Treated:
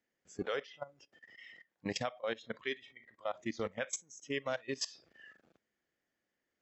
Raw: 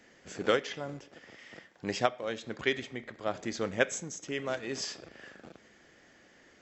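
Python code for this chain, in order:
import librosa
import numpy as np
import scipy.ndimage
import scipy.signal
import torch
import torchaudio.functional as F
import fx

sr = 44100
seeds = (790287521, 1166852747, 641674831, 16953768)

y = fx.level_steps(x, sr, step_db=18)
y = fx.noise_reduce_blind(y, sr, reduce_db=17)
y = y * 10.0 ** (2.0 / 20.0)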